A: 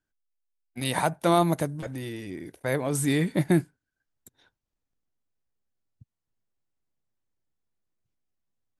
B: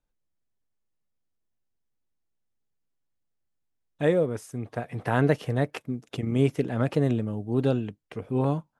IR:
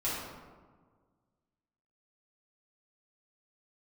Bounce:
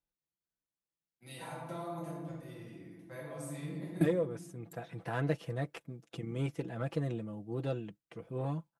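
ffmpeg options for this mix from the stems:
-filter_complex "[0:a]acompressor=threshold=-24dB:ratio=6,adelay=450,volume=-0.5dB,asplit=2[link_01][link_02];[link_02]volume=-22.5dB[link_03];[1:a]aeval=exprs='0.376*(cos(1*acos(clip(val(0)/0.376,-1,1)))-cos(1*PI/2))+0.00944*(cos(5*acos(clip(val(0)/0.376,-1,1)))-cos(5*PI/2))+0.0188*(cos(6*acos(clip(val(0)/0.376,-1,1)))-cos(6*PI/2))':channel_layout=same,volume=-12dB,asplit=2[link_04][link_05];[link_05]apad=whole_len=407708[link_06];[link_01][link_06]sidechaingate=range=-34dB:threshold=-51dB:ratio=16:detection=peak[link_07];[2:a]atrim=start_sample=2205[link_08];[link_03][link_08]afir=irnorm=-1:irlink=0[link_09];[link_07][link_04][link_09]amix=inputs=3:normalize=0,highpass=45,aecho=1:1:6:0.65"

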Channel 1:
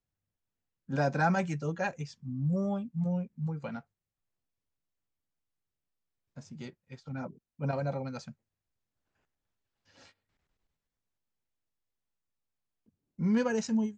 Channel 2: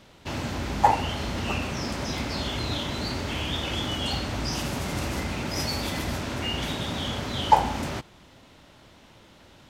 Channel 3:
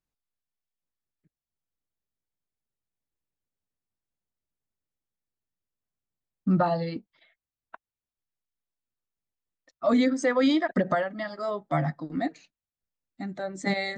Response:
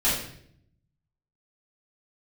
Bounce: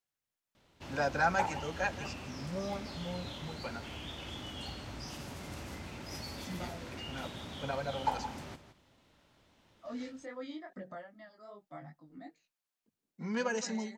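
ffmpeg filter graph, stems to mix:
-filter_complex "[0:a]highpass=frequency=800:poles=1,volume=2dB,asplit=2[link_01][link_02];[link_02]volume=-15dB[link_03];[1:a]adelay=550,volume=-14.5dB,asplit=2[link_04][link_05];[link_05]volume=-12dB[link_06];[2:a]flanger=delay=19.5:depth=3.6:speed=2.5,volume=-18dB[link_07];[link_03][link_06]amix=inputs=2:normalize=0,aecho=0:1:169:1[link_08];[link_01][link_04][link_07][link_08]amix=inputs=4:normalize=0"

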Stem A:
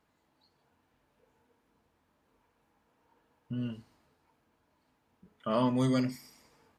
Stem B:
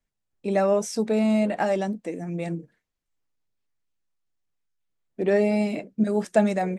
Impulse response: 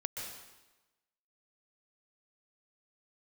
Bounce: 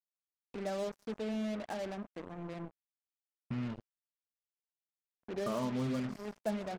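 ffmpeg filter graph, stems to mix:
-filter_complex "[0:a]acompressor=threshold=-36dB:ratio=3,volume=1.5dB,asplit=2[link_01][link_02];[1:a]acompressor=mode=upward:threshold=-24dB:ratio=2.5,adelay=100,volume=-16.5dB,asplit=2[link_03][link_04];[link_04]volume=-14.5dB[link_05];[link_02]apad=whole_len=303519[link_06];[link_03][link_06]sidechaincompress=threshold=-55dB:ratio=4:attack=16:release=169[link_07];[2:a]atrim=start_sample=2205[link_08];[link_05][link_08]afir=irnorm=-1:irlink=0[link_09];[link_01][link_07][link_09]amix=inputs=3:normalize=0,lowpass=frequency=1700:poles=1,acrusher=bits=6:mix=0:aa=0.5"

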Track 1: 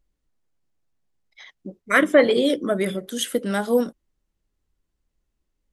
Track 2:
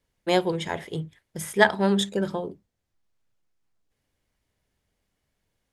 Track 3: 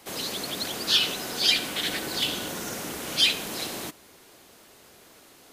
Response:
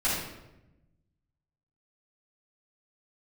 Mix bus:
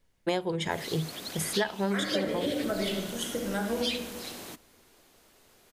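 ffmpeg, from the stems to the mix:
-filter_complex "[0:a]tremolo=f=170:d=0.4,volume=-9.5dB,asplit=2[link_01][link_02];[link_02]volume=-9.5dB[link_03];[1:a]volume=2.5dB[link_04];[2:a]adelay=650,volume=-8dB[link_05];[3:a]atrim=start_sample=2205[link_06];[link_03][link_06]afir=irnorm=-1:irlink=0[link_07];[link_01][link_04][link_05][link_07]amix=inputs=4:normalize=0,acompressor=threshold=-25dB:ratio=10"

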